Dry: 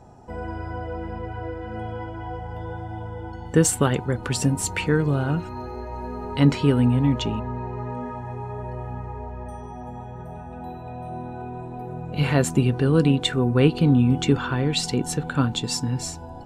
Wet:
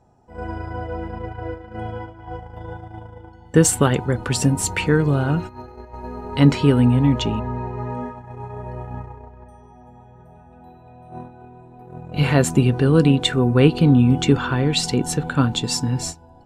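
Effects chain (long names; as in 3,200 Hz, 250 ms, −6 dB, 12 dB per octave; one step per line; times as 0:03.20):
noise gate −31 dBFS, range −13 dB
level +3.5 dB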